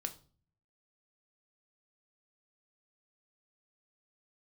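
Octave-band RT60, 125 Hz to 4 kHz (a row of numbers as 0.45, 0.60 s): 0.90, 0.70, 0.45, 0.40, 0.30, 0.35 s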